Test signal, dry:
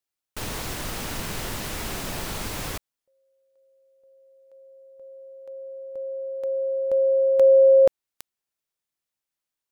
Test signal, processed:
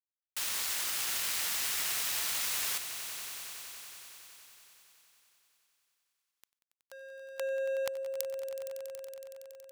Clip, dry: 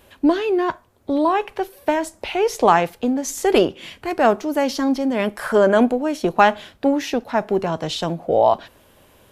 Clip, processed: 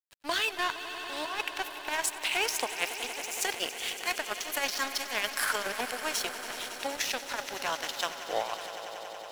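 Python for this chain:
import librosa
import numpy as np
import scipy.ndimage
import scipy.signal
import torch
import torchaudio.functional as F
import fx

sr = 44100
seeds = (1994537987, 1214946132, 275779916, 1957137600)

y = scipy.signal.sosfilt(scipy.signal.butter(2, 1300.0, 'highpass', fs=sr, output='sos'), x)
y = fx.high_shelf(y, sr, hz=3000.0, db=7.5)
y = fx.over_compress(y, sr, threshold_db=-28.0, ratio=-0.5)
y = np.sign(y) * np.maximum(np.abs(y) - 10.0 ** (-35.0 / 20.0), 0.0)
y = fx.echo_swell(y, sr, ms=93, loudest=5, wet_db=-15.0)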